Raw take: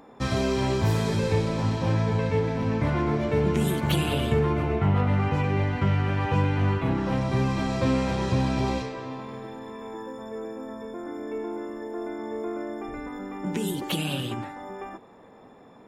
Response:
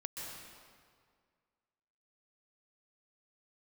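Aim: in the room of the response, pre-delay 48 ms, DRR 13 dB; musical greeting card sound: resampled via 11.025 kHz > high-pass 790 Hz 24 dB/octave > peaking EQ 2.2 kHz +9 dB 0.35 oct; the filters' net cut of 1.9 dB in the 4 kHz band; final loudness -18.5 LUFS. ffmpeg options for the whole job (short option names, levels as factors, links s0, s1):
-filter_complex "[0:a]equalizer=f=4000:t=o:g=-4,asplit=2[s0][s1];[1:a]atrim=start_sample=2205,adelay=48[s2];[s1][s2]afir=irnorm=-1:irlink=0,volume=0.237[s3];[s0][s3]amix=inputs=2:normalize=0,aresample=11025,aresample=44100,highpass=f=790:w=0.5412,highpass=f=790:w=1.3066,equalizer=f=2200:t=o:w=0.35:g=9,volume=5.96"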